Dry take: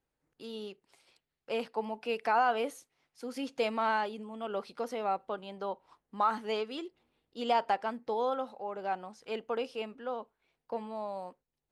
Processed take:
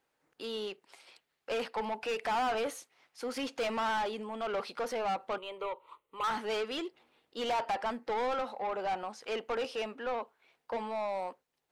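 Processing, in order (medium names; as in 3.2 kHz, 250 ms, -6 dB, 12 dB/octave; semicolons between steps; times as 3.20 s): treble shelf 8.5 kHz +5.5 dB; overdrive pedal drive 26 dB, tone 3.1 kHz, clips at -16 dBFS; 5.38–6.24 s: static phaser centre 1.1 kHz, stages 8; trim -8.5 dB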